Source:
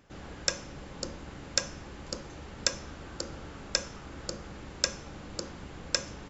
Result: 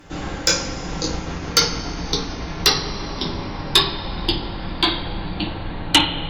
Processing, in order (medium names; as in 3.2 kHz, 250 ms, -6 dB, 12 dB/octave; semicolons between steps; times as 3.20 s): pitch bend over the whole clip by -10.5 st starting unshifted; two-slope reverb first 0.31 s, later 2.8 s, from -21 dB, DRR -2 dB; sine folder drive 9 dB, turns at -5.5 dBFS